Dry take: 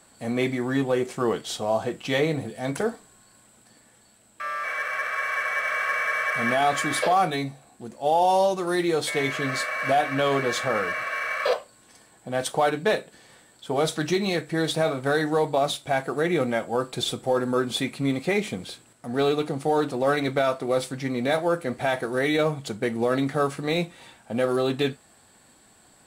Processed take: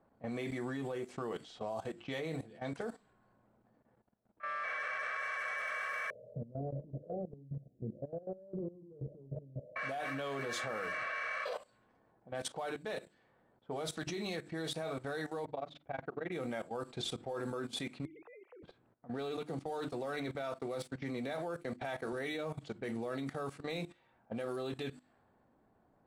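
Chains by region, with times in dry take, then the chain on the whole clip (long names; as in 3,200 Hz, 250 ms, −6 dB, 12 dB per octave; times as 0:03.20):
0:06.10–0:09.76: Butterworth low-pass 600 Hz 72 dB per octave + parametric band 130 Hz +12.5 dB 0.7 octaves + compressor whose output falls as the input rises −30 dBFS, ratio −0.5
0:15.45–0:16.32: low-pass filter 2,900 Hz + amplitude modulation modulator 22 Hz, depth 95%
0:18.05–0:18.63: three sine waves on the formant tracks + low-pass filter 2,300 Hz 24 dB per octave + downward compressor 10 to 1, threshold −32 dBFS
0:19.37–0:22.13: running median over 3 samples + noise gate −37 dBFS, range −15 dB + multiband upward and downward compressor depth 40%
whole clip: low-pass that shuts in the quiet parts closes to 820 Hz, open at −21.5 dBFS; mains-hum notches 50/100/150/200/250/300/350 Hz; output level in coarse steps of 16 dB; level −6.5 dB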